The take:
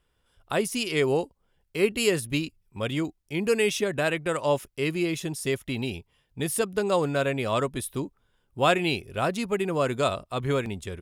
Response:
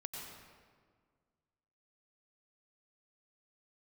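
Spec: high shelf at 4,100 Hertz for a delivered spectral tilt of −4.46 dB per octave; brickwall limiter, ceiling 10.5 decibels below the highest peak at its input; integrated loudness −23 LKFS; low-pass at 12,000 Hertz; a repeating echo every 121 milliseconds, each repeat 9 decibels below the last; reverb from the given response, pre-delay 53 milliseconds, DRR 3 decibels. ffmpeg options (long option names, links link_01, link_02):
-filter_complex "[0:a]lowpass=12000,highshelf=frequency=4100:gain=3,alimiter=limit=-18dB:level=0:latency=1,aecho=1:1:121|242|363|484:0.355|0.124|0.0435|0.0152,asplit=2[link_01][link_02];[1:a]atrim=start_sample=2205,adelay=53[link_03];[link_02][link_03]afir=irnorm=-1:irlink=0,volume=-1.5dB[link_04];[link_01][link_04]amix=inputs=2:normalize=0,volume=4dB"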